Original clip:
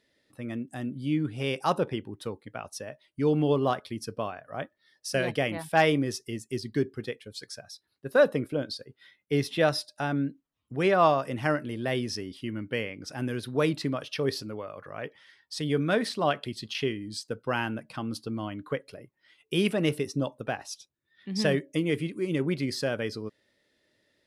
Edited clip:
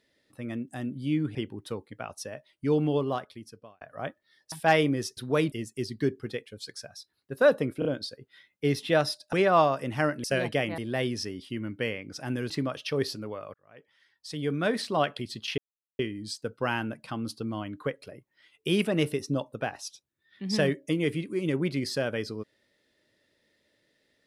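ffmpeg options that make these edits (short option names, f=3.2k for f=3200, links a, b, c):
-filter_complex "[0:a]asplit=14[a][b][c][d][e][f][g][h][i][j][k][l][m][n];[a]atrim=end=1.352[o];[b]atrim=start=1.898:end=4.36,asetpts=PTS-STARTPTS,afade=t=out:st=1.352:d=1.11[p];[c]atrim=start=4.36:end=5.072,asetpts=PTS-STARTPTS,afade=t=in:d=0.004:c=hsin[q];[d]atrim=start=5.608:end=6.262[r];[e]atrim=start=13.418:end=13.772[s];[f]atrim=start=6.258:end=8.562[t];[g]atrim=start=8.528:end=8.562[u];[h]atrim=start=8.528:end=10.012[v];[i]atrim=start=10.788:end=11.702[w];[j]atrim=start=5.068:end=5.612[x];[k]atrim=start=11.698:end=13.422[y];[l]atrim=start=13.768:end=14.81,asetpts=PTS-STARTPTS,afade=t=out:st=1.038:d=0.004:c=hsin[z];[m]atrim=start=14.81:end=16.85,asetpts=PTS-STARTPTS,afade=t=in:d=1.34,afade=t=out:st=2.036:d=0.004:c=hsin,apad=pad_dur=0.41[aa];[n]atrim=start=16.85,asetpts=PTS-STARTPTS,afade=t=in:d=0.004:c=hsin[ab];[p][q]concat=n=2:v=0:a=1[ac];[o][ac]acrossfade=d=0.004:c1=hsin:c2=hsin[ad];[ad][r]acrossfade=d=0.004:c1=hsin:c2=hsin[ae];[ae][s]acrossfade=d=0.004:c1=hsin:c2=hsin[af];[af][t]acrossfade=d=0.004:c1=hsin:c2=hsin[ag];[ag][u]acrossfade=d=0.004:c1=hsin:c2=hsin[ah];[ah][v]acrossfade=d=0.004:c1=hsin:c2=hsin[ai];[ai][w]acrossfade=d=0.004:c1=hsin:c2=hsin[aj];[aj][x]acrossfade=d=0.004:c1=hsin:c2=hsin[ak];[ak][y]acrossfade=d=0.004:c1=hsin:c2=hsin[al];[z][aa][ab]concat=n=3:v=0:a=1[am];[al][am]acrossfade=d=0.004:c1=hsin:c2=hsin"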